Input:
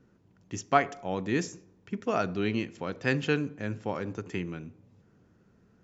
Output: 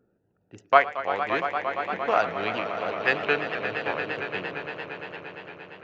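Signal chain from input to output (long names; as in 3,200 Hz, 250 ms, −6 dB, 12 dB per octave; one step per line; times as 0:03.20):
adaptive Wiener filter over 41 samples
three-way crossover with the lows and the highs turned down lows −20 dB, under 520 Hz, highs −22 dB, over 4,400 Hz
phase shifter 0.47 Hz, delay 2.6 ms, feedback 22%
echo that builds up and dies away 115 ms, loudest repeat 5, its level −12 dB
pitch modulation by a square or saw wave saw up 3.1 Hz, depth 100 cents
level +8 dB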